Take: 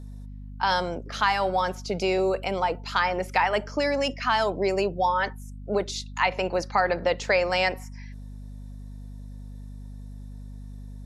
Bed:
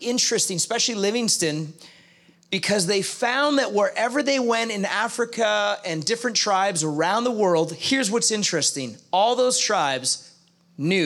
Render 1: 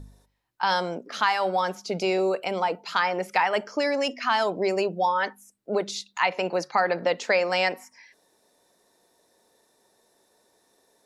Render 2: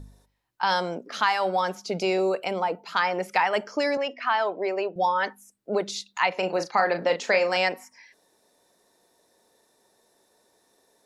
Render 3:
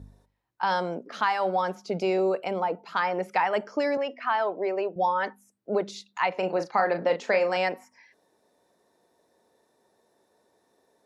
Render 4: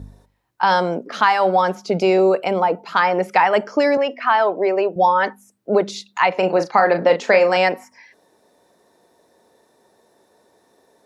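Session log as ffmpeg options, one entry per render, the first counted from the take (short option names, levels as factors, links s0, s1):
-af "bandreject=f=50:t=h:w=4,bandreject=f=100:t=h:w=4,bandreject=f=150:t=h:w=4,bandreject=f=200:t=h:w=4,bandreject=f=250:t=h:w=4"
-filter_complex "[0:a]asettb=1/sr,asplit=3[s0][s1][s2];[s0]atrim=end=2.534[s3];[s1]atrim=start=2.53:end=2.97,asetpts=PTS-STARTPTS,afade=t=in:d=0.004:c=qsin,afade=t=out:st=0.436:d=0.004:c=qsin,equalizer=f=5000:t=o:w=2.7:g=-6[s4];[s2]atrim=start=2.966[s5];[s3][s4]acrossfade=d=0.004:c1=hsin:c2=qsin[s6];[s6][s5]acrossfade=d=0.004:c1=qsin:c2=hsin,asettb=1/sr,asplit=3[s7][s8][s9];[s7]atrim=end=3.974[s10];[s8]atrim=start=3.97:end=4.96,asetpts=PTS-STARTPTS,afade=t=in:d=0.004:c=qsin,afade=t=out:st=0.986:d=0.004:c=qsin,highpass=400,lowpass=2700[s11];[s9]atrim=start=4.956[s12];[s10][s11]acrossfade=d=0.004:c1=hsin:c2=qsin[s13];[s13][s12]acrossfade=d=0.004:c1=qsin:c2=hsin,asettb=1/sr,asplit=3[s14][s15][s16];[s14]atrim=end=6.394[s17];[s15]atrim=start=6.39:end=7.57,asetpts=PTS-STARTPTS,afade=t=in:d=0.004:c=qsin,afade=t=out:st=1.176:d=0.004:c=qsin,asplit=2[s18][s19];[s19]adelay=36,volume=0.398[s20];[s18][s20]amix=inputs=2:normalize=0,atrim=end_sample=52038[s21];[s16]atrim=start=7.566[s22];[s17][s21]acrossfade=d=0.004:c1=hsin:c2=qsin[s23];[s23][s22]acrossfade=d=0.004:c1=qsin:c2=hsin"
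-af "highpass=47,highshelf=f=2400:g=-10.5"
-af "volume=2.99,alimiter=limit=0.794:level=0:latency=1"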